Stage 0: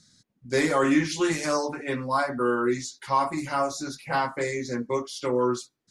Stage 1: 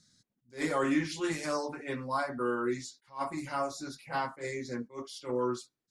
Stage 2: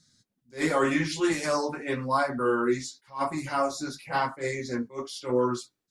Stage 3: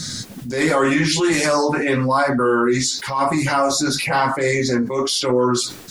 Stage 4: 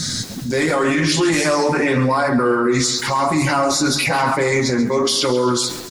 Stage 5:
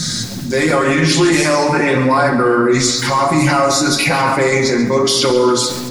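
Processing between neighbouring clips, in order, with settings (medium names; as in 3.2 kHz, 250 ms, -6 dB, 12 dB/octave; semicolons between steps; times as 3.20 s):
dynamic bell 6.2 kHz, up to -5 dB, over -53 dBFS, Q 7; attacks held to a fixed rise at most 240 dB/s; trim -7 dB
level rider gain up to 4.5 dB; flange 0.91 Hz, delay 6.7 ms, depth 6.8 ms, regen -37%; trim +5.5 dB
level flattener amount 70%; trim +5.5 dB
peak limiter -14.5 dBFS, peak gain reduction 8.5 dB; feedback delay 134 ms, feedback 55%, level -13.5 dB; trim +5 dB
simulated room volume 1500 m³, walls mixed, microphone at 0.89 m; trim +2.5 dB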